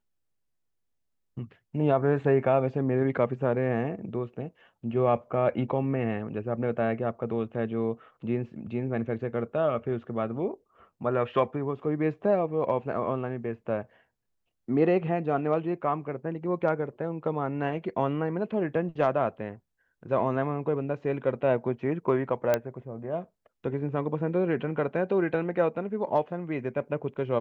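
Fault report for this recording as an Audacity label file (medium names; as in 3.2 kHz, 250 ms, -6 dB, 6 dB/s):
22.540000	22.540000	pop -11 dBFS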